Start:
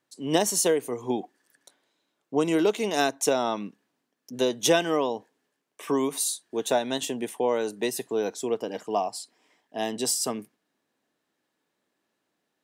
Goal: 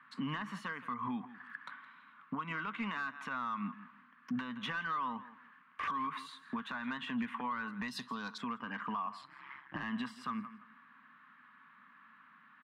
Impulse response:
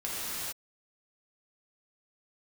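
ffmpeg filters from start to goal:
-filter_complex "[0:a]highpass=150,acompressor=threshold=-36dB:ratio=12,firequalizer=gain_entry='entry(240,0);entry(340,-29);entry(730,-22);entry(1100,7);entry(6000,-29)':delay=0.05:min_phase=1,aecho=1:1:167|334:0.1|0.017,asplit=2[a][b];[b]highpass=f=720:p=1,volume=16dB,asoftclip=type=tanh:threshold=-27dB[c];[a][c]amix=inputs=2:normalize=0,lowpass=f=1.1k:p=1,volume=-6dB,asettb=1/sr,asplit=3[d][e][f];[d]atrim=end=9.214[g];[e]atrim=start=9.21:end=9.83,asetpts=PTS-STARTPTS,afade=t=in:d=0.004:c=qsin,afade=t=out:st=0.616:d=0.004:c=qsin,aeval=exprs='val(0)*sin(2*PI*68*n/s)':c=same[h];[f]atrim=start=9.826[i];[g][h]acrossfade=d=0.004:c1=hsin:c2=qsin[j];[j][i]acrossfade=d=0.004:c1=qsin:c2=hsin,alimiter=level_in=20dB:limit=-24dB:level=0:latency=1:release=433,volume=-20dB,asettb=1/sr,asplit=3[k][l][m];[k]atrim=end=7.884[n];[l]atrim=start=7.88:end=8.38,asetpts=PTS-STARTPTS,afade=t=in:d=0.004:c=qsin,afade=t=out:st=0.496:d=0.004:c=qsin,highshelf=f=3.2k:t=q:w=3:g=13[o];[m]atrim=start=8.376[p];[n][o]acrossfade=d=0.004:c1=hsin:c2=qsin[q];[q][p]acrossfade=d=0.004:c1=qsin:c2=hsin,volume=14.5dB"

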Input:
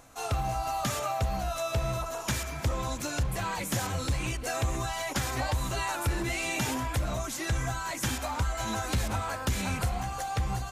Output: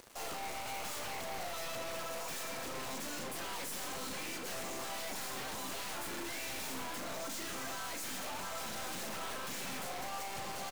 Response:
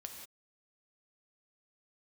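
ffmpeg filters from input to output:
-filter_complex "[0:a]highpass=f=220:w=0.5412,highpass=f=220:w=1.3066,asplit=2[a][b];[b]alimiter=level_in=3dB:limit=-24dB:level=0:latency=1:release=178,volume=-3dB,volume=-0.5dB[c];[a][c]amix=inputs=2:normalize=0,aeval=exprs='sgn(val(0))*max(abs(val(0))-0.00501,0)':c=same,asplit=4[d][e][f][g];[e]asetrate=33038,aresample=44100,atempo=1.33484,volume=-9dB[h];[f]asetrate=35002,aresample=44100,atempo=1.25992,volume=-15dB[i];[g]asetrate=37084,aresample=44100,atempo=1.18921,volume=-17dB[j];[d][h][i][j]amix=inputs=4:normalize=0,aeval=exprs='0.0376*(abs(mod(val(0)/0.0376+3,4)-2)-1)':c=same,aeval=exprs='(tanh(447*val(0)+0.4)-tanh(0.4))/447':c=same,asplit=2[k][l];[1:a]atrim=start_sample=2205,adelay=38[m];[l][m]afir=irnorm=-1:irlink=0,volume=-3dB[n];[k][n]amix=inputs=2:normalize=0,volume=11dB"

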